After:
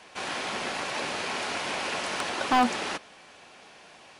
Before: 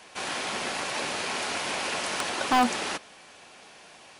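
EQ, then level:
high-shelf EQ 7,800 Hz −9.5 dB
0.0 dB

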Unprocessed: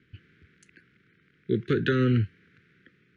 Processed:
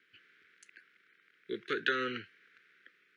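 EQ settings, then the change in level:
high-pass filter 700 Hz 12 dB per octave
0.0 dB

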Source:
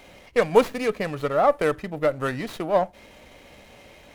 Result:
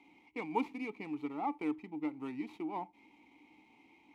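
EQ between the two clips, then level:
formant filter u
high-shelf EQ 5,600 Hz +10.5 dB
−1.5 dB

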